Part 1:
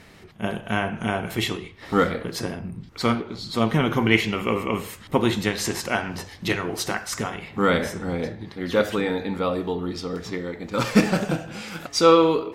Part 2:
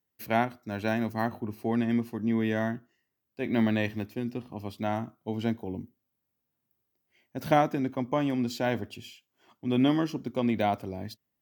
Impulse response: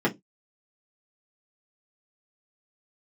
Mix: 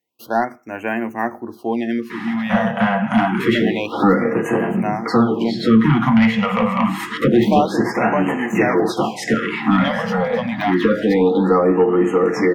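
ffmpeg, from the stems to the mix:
-filter_complex "[0:a]acrossover=split=180[a][b];[b]acompressor=threshold=-37dB:ratio=5[c];[a][c]amix=inputs=2:normalize=0,equalizer=f=930:t=o:w=2.5:g=5,adelay=2100,volume=-1dB,asplit=2[d][e];[e]volume=-7.5dB[f];[1:a]volume=-4.5dB,asplit=3[g][h][i];[h]volume=-22.5dB[j];[i]apad=whole_len=645904[k];[d][k]sidechaincompress=threshold=-38dB:ratio=8:attack=16:release=723[l];[2:a]atrim=start_sample=2205[m];[f][j]amix=inputs=2:normalize=0[n];[n][m]afir=irnorm=-1:irlink=0[o];[l][g][o]amix=inputs=3:normalize=0,asplit=2[p][q];[q]highpass=f=720:p=1,volume=20dB,asoftclip=type=tanh:threshold=-1dB[r];[p][r]amix=inputs=2:normalize=0,lowpass=f=3.7k:p=1,volume=-6dB,afftfilt=real='re*(1-between(b*sr/1024,310*pow(4500/310,0.5+0.5*sin(2*PI*0.27*pts/sr))/1.41,310*pow(4500/310,0.5+0.5*sin(2*PI*0.27*pts/sr))*1.41))':imag='im*(1-between(b*sr/1024,310*pow(4500/310,0.5+0.5*sin(2*PI*0.27*pts/sr))/1.41,310*pow(4500/310,0.5+0.5*sin(2*PI*0.27*pts/sr))*1.41))':win_size=1024:overlap=0.75"

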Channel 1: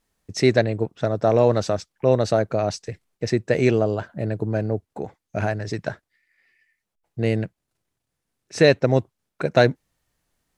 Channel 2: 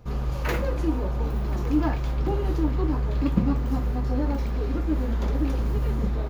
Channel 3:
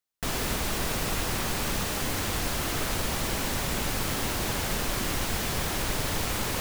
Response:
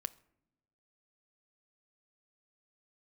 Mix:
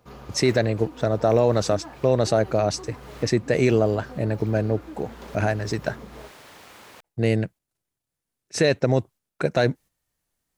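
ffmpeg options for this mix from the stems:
-filter_complex "[0:a]agate=range=-8dB:threshold=-41dB:ratio=16:detection=peak,highshelf=f=7.7k:g=8,volume=1dB,asplit=2[a][b];[1:a]highpass=f=390:p=1,acompressor=threshold=-33dB:ratio=6,volume=-3.5dB[c];[2:a]highpass=f=560:p=1,highshelf=f=4.5k:g=-10.5,adelay=400,volume=-12dB[d];[b]apad=whole_len=308890[e];[d][e]sidechaincompress=threshold=-34dB:ratio=8:attack=6.3:release=311[f];[a][c][f]amix=inputs=3:normalize=0,alimiter=limit=-8dB:level=0:latency=1:release=39"

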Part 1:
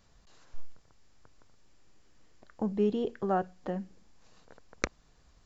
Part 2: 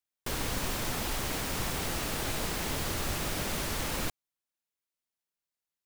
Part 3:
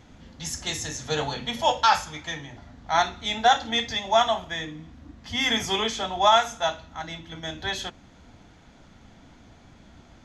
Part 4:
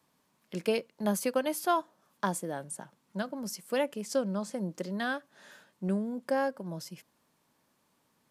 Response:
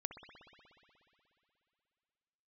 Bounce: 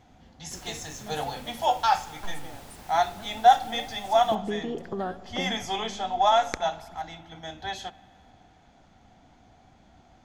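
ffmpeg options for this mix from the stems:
-filter_complex "[0:a]acompressor=threshold=-33dB:ratio=6,adelay=1700,volume=2dB,asplit=2[a][b];[b]volume=-5dB[c];[1:a]adelay=250,volume=-15.5dB[d];[2:a]equalizer=f=750:w=4.6:g=12,volume=-8.5dB,asplit=2[e][f];[f]volume=-11dB[g];[3:a]acompressor=threshold=-35dB:ratio=2,volume=-10dB[h];[4:a]atrim=start_sample=2205[i];[c][g]amix=inputs=2:normalize=0[j];[j][i]afir=irnorm=-1:irlink=0[k];[a][d][e][h][k]amix=inputs=5:normalize=0"

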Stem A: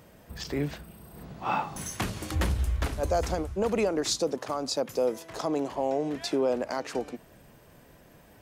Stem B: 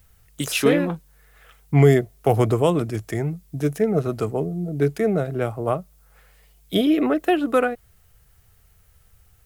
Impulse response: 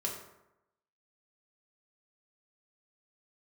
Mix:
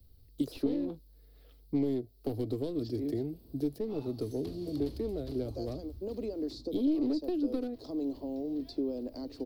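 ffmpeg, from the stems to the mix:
-filter_complex "[0:a]adelay=2450,volume=-5dB[a];[1:a]aeval=exprs='clip(val(0),-1,0.0891)':c=same,volume=-2dB[b];[a][b]amix=inputs=2:normalize=0,acrossover=split=110|310|1700[c][d][e][f];[c]acompressor=threshold=-45dB:ratio=4[g];[d]acompressor=threshold=-46dB:ratio=4[h];[e]acompressor=threshold=-34dB:ratio=4[i];[f]acompressor=threshold=-44dB:ratio=4[j];[g][h][i][j]amix=inputs=4:normalize=0,firequalizer=gain_entry='entry(120,0);entry(180,-8);entry(260,9);entry(370,1);entry(830,-15);entry(1500,-23);entry(2600,-17);entry(4400,1);entry(6500,-19);entry(15000,-5)':delay=0.05:min_phase=1"

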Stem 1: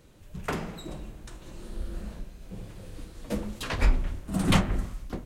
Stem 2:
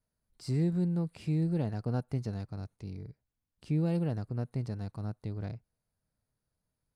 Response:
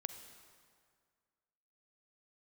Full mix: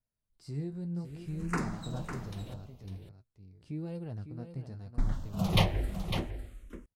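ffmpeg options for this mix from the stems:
-filter_complex "[0:a]asplit=2[a][b];[b]afreqshift=-0.61[c];[a][c]amix=inputs=2:normalize=1,adelay=1050,volume=0dB,asplit=3[d][e][f];[d]atrim=end=2.54,asetpts=PTS-STARTPTS,afade=t=out:st=2.536:d=0.004:c=hsin[g];[e]atrim=start=2.54:end=4.98,asetpts=PTS-STARTPTS,volume=0[h];[f]atrim=start=4.98,asetpts=PTS-STARTPTS,afade=t=in:d=0.004:c=hsin[i];[g][h][i]concat=n=3:v=0:a=1,asplit=2[j][k];[k]volume=-8.5dB[l];[1:a]lowshelf=f=81:g=7.5,flanger=delay=7.6:depth=7:regen=48:speed=0.76:shape=triangular,volume=-5dB,asplit=2[m][n];[n]volume=-9.5dB[o];[l][o]amix=inputs=2:normalize=0,aecho=0:1:553:1[p];[j][m][p]amix=inputs=3:normalize=0"

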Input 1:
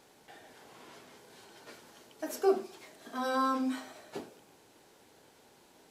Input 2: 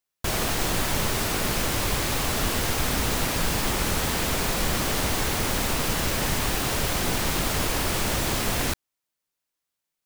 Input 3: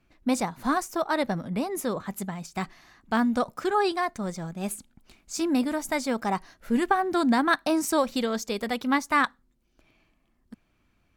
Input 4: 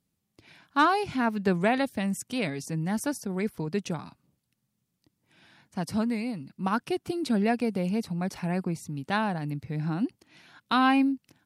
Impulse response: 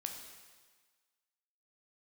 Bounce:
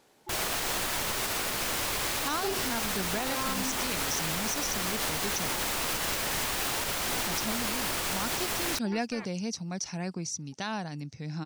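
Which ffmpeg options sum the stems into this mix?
-filter_complex "[0:a]volume=-2dB[a];[1:a]lowshelf=f=340:g=-12,adelay=50,volume=-1dB[b];[2:a]aeval=exprs='val(0)*sin(2*PI*610*n/s)':c=same,volume=-18dB[c];[3:a]lowpass=f=5.9k:t=q:w=7,highshelf=f=4.1k:g=9.5,adelay=1500,volume=-6dB[d];[a][b][c][d]amix=inputs=4:normalize=0,alimiter=limit=-20.5dB:level=0:latency=1:release=78"

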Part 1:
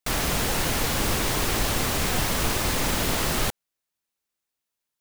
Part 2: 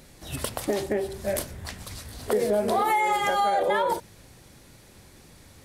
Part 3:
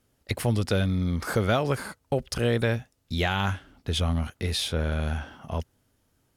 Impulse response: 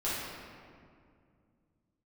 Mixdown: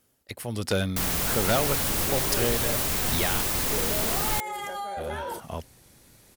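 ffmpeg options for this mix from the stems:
-filter_complex "[0:a]adelay=900,volume=-5dB[a];[1:a]alimiter=limit=-21.5dB:level=0:latency=1:release=18,adelay=1400,volume=-5.5dB[b];[2:a]lowshelf=f=130:g=-8.5,tremolo=f=1.3:d=0.7,volume=1.5dB,asplit=3[c][d][e];[c]atrim=end=3.41,asetpts=PTS-STARTPTS,afade=t=out:st=3.406:d=0.004:c=hsin[f];[d]atrim=start=3.41:end=4.97,asetpts=PTS-STARTPTS,volume=0[g];[e]atrim=start=4.97,asetpts=PTS-STARTPTS,afade=t=in:d=0.004:c=hsin[h];[f][g][h]concat=n=3:v=0:a=1[i];[a][b][i]amix=inputs=3:normalize=0,highshelf=f=8.8k:g=10.5,aeval=exprs='0.178*(abs(mod(val(0)/0.178+3,4)-2)-1)':c=same"

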